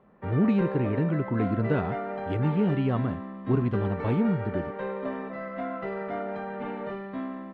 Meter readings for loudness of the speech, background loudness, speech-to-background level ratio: -27.5 LUFS, -34.5 LUFS, 7.0 dB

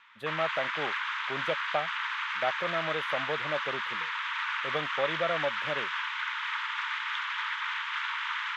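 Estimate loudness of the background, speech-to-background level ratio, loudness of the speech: -32.0 LUFS, -3.0 dB, -35.0 LUFS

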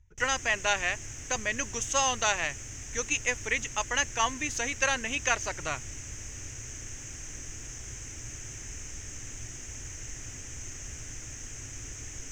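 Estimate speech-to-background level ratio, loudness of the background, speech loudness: 11.5 dB, -40.5 LUFS, -29.0 LUFS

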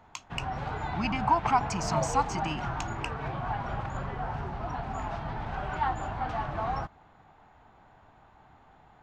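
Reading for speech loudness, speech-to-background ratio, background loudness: -31.0 LUFS, 3.0 dB, -34.0 LUFS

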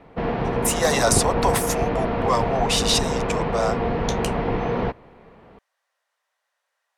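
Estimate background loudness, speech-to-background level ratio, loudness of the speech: -24.5 LUFS, 1.0 dB, -23.5 LUFS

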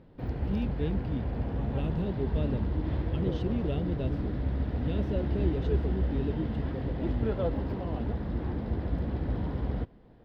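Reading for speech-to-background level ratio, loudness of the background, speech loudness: -4.0 dB, -32.5 LUFS, -36.5 LUFS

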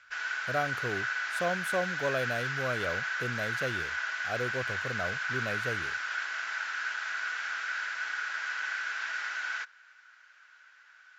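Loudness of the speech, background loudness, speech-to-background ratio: -36.0 LUFS, -33.0 LUFS, -3.0 dB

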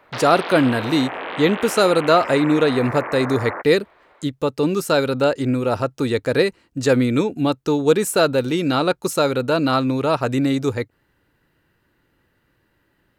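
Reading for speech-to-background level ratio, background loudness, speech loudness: 9.5 dB, -29.0 LUFS, -19.5 LUFS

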